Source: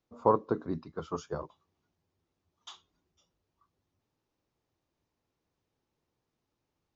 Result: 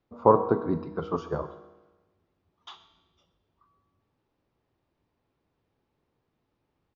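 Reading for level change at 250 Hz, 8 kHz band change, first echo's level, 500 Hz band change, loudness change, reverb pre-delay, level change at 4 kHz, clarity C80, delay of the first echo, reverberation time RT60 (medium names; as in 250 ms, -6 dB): +6.5 dB, no reading, -19.0 dB, +6.5 dB, +6.5 dB, 4 ms, +1.5 dB, 12.5 dB, 127 ms, 1.2 s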